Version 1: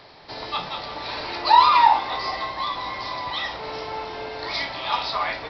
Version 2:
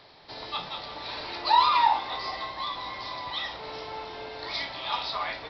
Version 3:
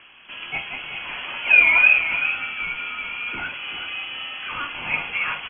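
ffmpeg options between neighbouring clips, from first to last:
ffmpeg -i in.wav -af "equalizer=frequency=3600:width_type=o:width=0.53:gain=4,volume=-6.5dB" out.wav
ffmpeg -i in.wav -af "aecho=1:1:384:0.335,lowpass=frequency=2900:width_type=q:width=0.5098,lowpass=frequency=2900:width_type=q:width=0.6013,lowpass=frequency=2900:width_type=q:width=0.9,lowpass=frequency=2900:width_type=q:width=2.563,afreqshift=-3400,volume=6.5dB" out.wav

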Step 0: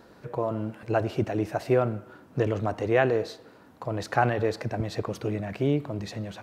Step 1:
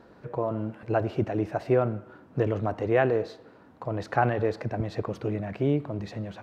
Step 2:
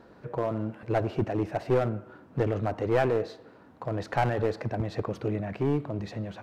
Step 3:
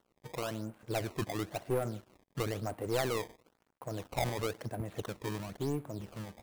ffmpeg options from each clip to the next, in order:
ffmpeg -i in.wav -af "lowpass=frequency=2200:poles=1" out.wav
ffmpeg -i in.wav -af "aeval=exprs='clip(val(0),-1,0.0668)':channel_layout=same" out.wav
ffmpeg -i in.wav -af "acrusher=samples=18:mix=1:aa=0.000001:lfo=1:lforange=28.8:lforate=0.99,aeval=exprs='sgn(val(0))*max(abs(val(0))-0.00316,0)':channel_layout=same,volume=-7.5dB" out.wav

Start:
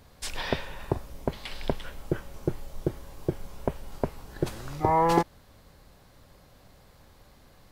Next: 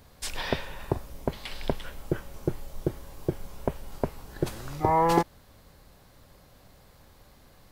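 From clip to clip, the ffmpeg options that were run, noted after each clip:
ffmpeg -i in.wav -af "highshelf=frequency=11000:gain=5" out.wav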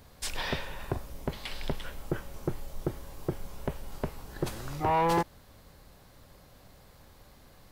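ffmpeg -i in.wav -af "asoftclip=type=tanh:threshold=-20.5dB" out.wav

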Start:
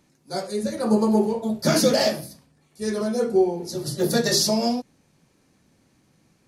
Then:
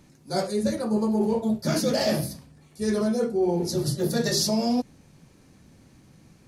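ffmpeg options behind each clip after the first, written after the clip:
ffmpeg -i in.wav -af "lowshelf=frequency=170:gain=9,areverse,acompressor=threshold=-25dB:ratio=12,areverse,volume=4.5dB" out.wav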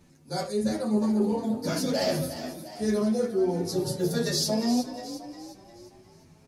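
ffmpeg -i in.wav -filter_complex "[0:a]asplit=6[link_01][link_02][link_03][link_04][link_05][link_06];[link_02]adelay=355,afreqshift=38,volume=-10dB[link_07];[link_03]adelay=710,afreqshift=76,volume=-16.9dB[link_08];[link_04]adelay=1065,afreqshift=114,volume=-23.9dB[link_09];[link_05]adelay=1420,afreqshift=152,volume=-30.8dB[link_10];[link_06]adelay=1775,afreqshift=190,volume=-37.7dB[link_11];[link_01][link_07][link_08][link_09][link_10][link_11]amix=inputs=6:normalize=0,asplit=2[link_12][link_13];[link_13]adelay=8.7,afreqshift=-0.48[link_14];[link_12][link_14]amix=inputs=2:normalize=1" out.wav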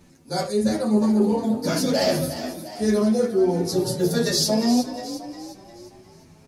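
ffmpeg -i in.wav -af "bandreject=frequency=50:width_type=h:width=6,bandreject=frequency=100:width_type=h:width=6,bandreject=frequency=150:width_type=h:width=6,volume=5.5dB" out.wav

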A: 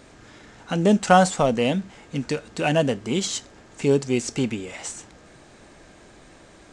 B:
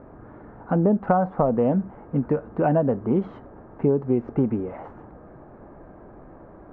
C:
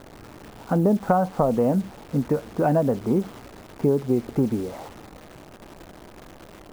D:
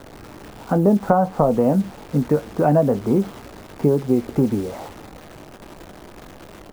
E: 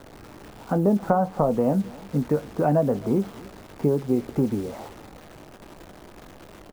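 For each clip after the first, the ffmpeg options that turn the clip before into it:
ffmpeg -i in.wav -af "lowpass=frequency=1200:width=0.5412,lowpass=frequency=1200:width=1.3066,acompressor=threshold=-21dB:ratio=12,volume=5dB" out.wav
ffmpeg -i in.wav -af "acrusher=bits=8:dc=4:mix=0:aa=0.000001" out.wav
ffmpeg -i in.wav -filter_complex "[0:a]acrossover=split=270|1600[link_01][link_02][link_03];[link_03]alimiter=level_in=9.5dB:limit=-24dB:level=0:latency=1:release=451,volume=-9.5dB[link_04];[link_01][link_02][link_04]amix=inputs=3:normalize=0,asplit=2[link_05][link_06];[link_06]adelay=20,volume=-12dB[link_07];[link_05][link_07]amix=inputs=2:normalize=0,volume=3.5dB" out.wav
ffmpeg -i in.wav -af "aecho=1:1:267:0.0794,volume=-4.5dB" out.wav

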